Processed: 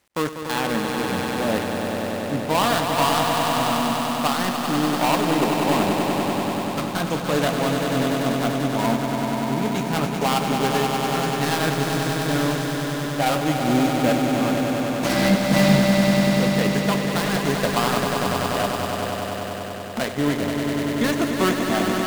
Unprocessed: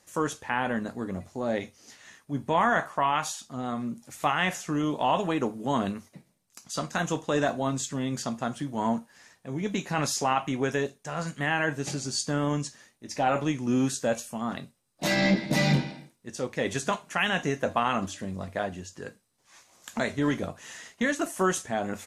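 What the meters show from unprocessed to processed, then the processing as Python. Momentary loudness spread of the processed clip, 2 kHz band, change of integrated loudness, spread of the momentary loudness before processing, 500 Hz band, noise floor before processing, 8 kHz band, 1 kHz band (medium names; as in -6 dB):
7 LU, +5.0 dB, +7.0 dB, 11 LU, +8.0 dB, -68 dBFS, +5.0 dB, +6.5 dB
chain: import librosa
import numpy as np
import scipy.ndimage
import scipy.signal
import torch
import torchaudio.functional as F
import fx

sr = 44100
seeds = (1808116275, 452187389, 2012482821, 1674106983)

y = fx.dead_time(x, sr, dead_ms=0.21)
y = fx.echo_swell(y, sr, ms=97, loudest=5, wet_db=-7)
y = F.gain(torch.from_numpy(y), 4.0).numpy()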